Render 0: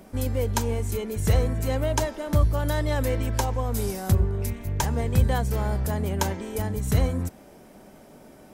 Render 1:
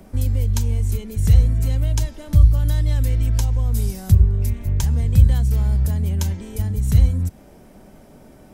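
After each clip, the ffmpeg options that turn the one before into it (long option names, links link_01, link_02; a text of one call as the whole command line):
ffmpeg -i in.wav -filter_complex "[0:a]lowshelf=frequency=140:gain=11.5,acrossover=split=220|2400[link_01][link_02][link_03];[link_02]acompressor=threshold=-38dB:ratio=6[link_04];[link_01][link_04][link_03]amix=inputs=3:normalize=0" out.wav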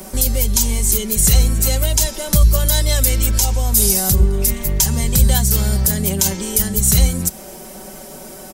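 ffmpeg -i in.wav -af "bass=frequency=250:gain=-9,treble=frequency=4000:gain=13,aecho=1:1:5.3:0.68,alimiter=level_in=12dB:limit=-1dB:release=50:level=0:latency=1,volume=-1.5dB" out.wav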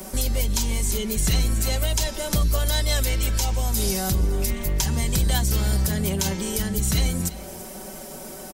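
ffmpeg -i in.wav -filter_complex "[0:a]acrossover=split=790|4800[link_01][link_02][link_03];[link_01]asoftclip=type=tanh:threshold=-15dB[link_04];[link_03]acompressor=threshold=-27dB:ratio=5[link_05];[link_04][link_02][link_05]amix=inputs=3:normalize=0,aecho=1:1:339:0.126,volume=-2.5dB" out.wav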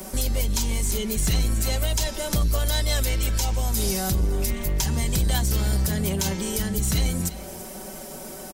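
ffmpeg -i in.wav -af "asoftclip=type=tanh:threshold=-13.5dB" out.wav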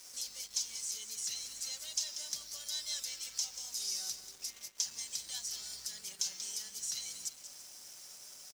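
ffmpeg -i in.wav -filter_complex "[0:a]bandpass=frequency=5600:width_type=q:width=3:csg=0,acrusher=bits=7:mix=0:aa=0.5,asplit=2[link_01][link_02];[link_02]aecho=0:1:187:0.282[link_03];[link_01][link_03]amix=inputs=2:normalize=0,volume=-2.5dB" out.wav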